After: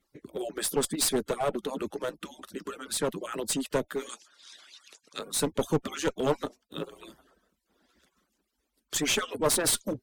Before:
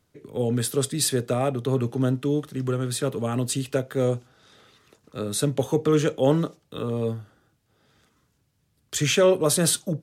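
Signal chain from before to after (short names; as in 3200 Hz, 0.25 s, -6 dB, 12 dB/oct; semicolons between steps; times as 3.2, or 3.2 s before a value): median-filter separation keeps percussive; one-sided clip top -27 dBFS; 4.09–5.19 weighting filter ITU-R 468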